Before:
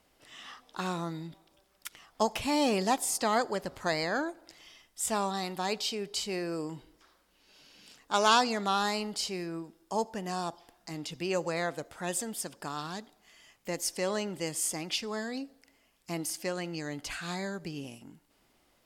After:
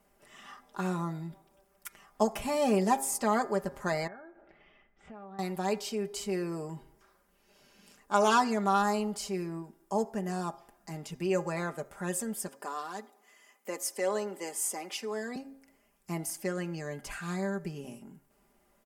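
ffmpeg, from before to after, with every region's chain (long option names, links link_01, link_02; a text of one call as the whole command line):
ffmpeg -i in.wav -filter_complex "[0:a]asettb=1/sr,asplit=3[link_01][link_02][link_03];[link_01]atrim=end=4.074[link_04];[link_02]atrim=start=4.07:end=5.39,asetpts=PTS-STARTPTS,afade=type=in:duration=0.004:curve=qsin,afade=type=out:start_time=1.316:duration=0.004:curve=qsin,lowpass=frequency=2700:width=0.5412,lowpass=frequency=2700:width=1.3066,acompressor=threshold=-49dB:ratio=4:attack=3.2:release=140:knee=1:detection=peak,bandreject=frequency=1000:width=8.1[link_05];[link_03]atrim=start=5.386[link_06];[link_04][link_05]acrossfade=duration=0.004:curve1=hsin:curve2=qsin[link_07];[link_07][link_06]acrossfade=duration=0.004:curve1=qsin:curve2=hsin,asettb=1/sr,asplit=3[link_08][link_09][link_10];[link_08]atrim=end=12.484[link_11];[link_09]atrim=start=12.48:end=15.36,asetpts=PTS-STARTPTS,afade=type=in:duration=0.004:curve=qsin,afade=type=out:start_time=2.876:duration=0.004:curve=qsin,highpass=frequency=280:width=0.5412,highpass=frequency=280:width=1.3066,aecho=1:1:4:0.33,atrim=end_sample=127008[link_12];[link_10]atrim=start=15.356[link_13];[link_11][link_12]acrossfade=duration=0.004:curve1=hsin:curve2=qsin[link_14];[link_14][link_13]acrossfade=duration=0.004:curve1=qsin:curve2=hsin,equalizer=frequency=3900:width=0.99:gain=-12,aecho=1:1:5:0.69,bandreject=frequency=135.5:width_type=h:width=4,bandreject=frequency=271:width_type=h:width=4,bandreject=frequency=406.5:width_type=h:width=4,bandreject=frequency=542:width_type=h:width=4,bandreject=frequency=677.5:width_type=h:width=4,bandreject=frequency=813:width_type=h:width=4,bandreject=frequency=948.5:width_type=h:width=4,bandreject=frequency=1084:width_type=h:width=4,bandreject=frequency=1219.5:width_type=h:width=4,bandreject=frequency=1355:width_type=h:width=4,bandreject=frequency=1490.5:width_type=h:width=4,bandreject=frequency=1626:width_type=h:width=4,bandreject=frequency=1761.5:width_type=h:width=4,bandreject=frequency=1897:width_type=h:width=4,bandreject=frequency=2032.5:width_type=h:width=4,bandreject=frequency=2168:width_type=h:width=4,bandreject=frequency=2303.5:width_type=h:width=4,bandreject=frequency=2439:width_type=h:width=4" out.wav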